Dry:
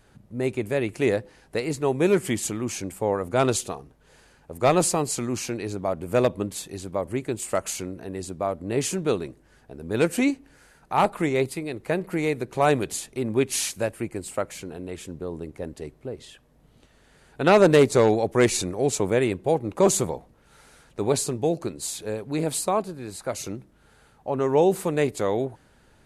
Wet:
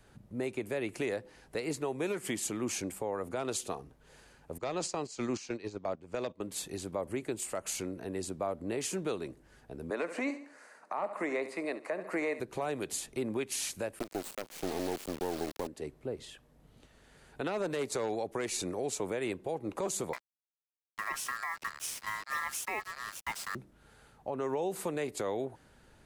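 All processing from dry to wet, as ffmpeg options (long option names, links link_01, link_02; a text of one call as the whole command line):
ffmpeg -i in.wav -filter_complex "[0:a]asettb=1/sr,asplit=3[link_01][link_02][link_03];[link_01]atrim=end=4.584[link_04];[link_02]atrim=start=4.58:end=6.41,asetpts=PTS-STARTPTS,afade=type=in:duration=0.004:curve=qsin,afade=type=out:start_time=1.826:duration=0.004:curve=qsin,lowpass=frequency=6200:width=0.5412,lowpass=frequency=6200:width=1.3066,agate=range=-14dB:threshold=-30dB:ratio=16:release=100:detection=peak,highshelf=frequency=4600:gain=10[link_05];[link_03]atrim=start=6.406[link_06];[link_04][link_05]acrossfade=duration=0.004:curve1=hsin:curve2=qsin[link_07];[link_07][link_06]acrossfade=duration=0.004:curve1=qsin:curve2=hsin,asettb=1/sr,asplit=3[link_08][link_09][link_10];[link_08]atrim=end=9.904[link_11];[link_09]atrim=start=9.9:end=12.4,asetpts=PTS-STARTPTS,afade=type=in:duration=0.004:curve=qsin,afade=type=out:start_time=2.496:duration=0.004:curve=qsin,acrossover=split=4200[link_12][link_13];[link_13]acompressor=threshold=-46dB:ratio=4:attack=1:release=60[link_14];[link_12][link_14]amix=inputs=2:normalize=0,highpass=frequency=260:width=0.5412,highpass=frequency=260:width=1.3066,equalizer=frequency=370:width_type=q:width=4:gain=-5,equalizer=frequency=610:width_type=q:width=4:gain=8,equalizer=frequency=1100:width_type=q:width=4:gain=9,equalizer=frequency=1900:width_type=q:width=4:gain=6,equalizer=frequency=3300:width_type=q:width=4:gain=-9,lowpass=frequency=9900:width=0.5412,lowpass=frequency=9900:width=1.3066,aecho=1:1:70|140|210:0.178|0.0569|0.0182,atrim=end_sample=110250[link_15];[link_10]atrim=start=12.396[link_16];[link_11][link_15]acrossfade=duration=0.004:curve1=hsin:curve2=qsin[link_17];[link_17][link_16]acrossfade=duration=0.004:curve1=qsin:curve2=hsin,asettb=1/sr,asplit=3[link_18][link_19][link_20];[link_18]atrim=end=13.994[link_21];[link_19]atrim=start=13.99:end=15.67,asetpts=PTS-STARTPTS,afade=type=in:duration=0.004:curve=qsin,afade=type=out:start_time=1.676:duration=0.004:curve=qsin,equalizer=frequency=340:width_type=o:width=2.4:gain=11,aeval=exprs='val(0)+0.00282*sin(2*PI*4300*n/s)':channel_layout=same,acrusher=bits=3:dc=4:mix=0:aa=0.000001[link_22];[link_20]atrim=start=15.666[link_23];[link_21][link_22]acrossfade=duration=0.004:curve1=hsin:curve2=qsin[link_24];[link_24][link_23]acrossfade=duration=0.004:curve1=qsin:curve2=hsin,asettb=1/sr,asplit=3[link_25][link_26][link_27];[link_25]atrim=end=20.134[link_28];[link_26]atrim=start=20.13:end=23.55,asetpts=PTS-STARTPTS,afade=type=in:duration=0.004:curve=qsin,afade=type=out:start_time=3.416:duration=0.004:curve=qsin,aeval=exprs='val(0)*sin(2*PI*1500*n/s)':channel_layout=same,acrusher=bits=5:mix=0:aa=0.5[link_29];[link_27]atrim=start=23.546[link_30];[link_28][link_29]acrossfade=duration=0.004:curve1=hsin:curve2=qsin[link_31];[link_31][link_30]acrossfade=duration=0.004:curve1=qsin:curve2=hsin,acrossover=split=200|580[link_32][link_33][link_34];[link_32]acompressor=threshold=-44dB:ratio=4[link_35];[link_33]acompressor=threshold=-26dB:ratio=4[link_36];[link_34]acompressor=threshold=-25dB:ratio=4[link_37];[link_35][link_36][link_37]amix=inputs=3:normalize=0,alimiter=limit=-21.5dB:level=0:latency=1:release=209,volume=-3dB" out.wav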